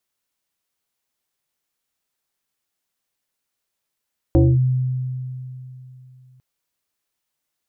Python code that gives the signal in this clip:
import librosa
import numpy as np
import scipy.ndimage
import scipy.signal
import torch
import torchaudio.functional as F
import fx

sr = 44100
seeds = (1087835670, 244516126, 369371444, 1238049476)

y = fx.fm2(sr, length_s=2.05, level_db=-9, carrier_hz=128.0, ratio=1.61, index=1.7, index_s=0.23, decay_s=3.11, shape='linear')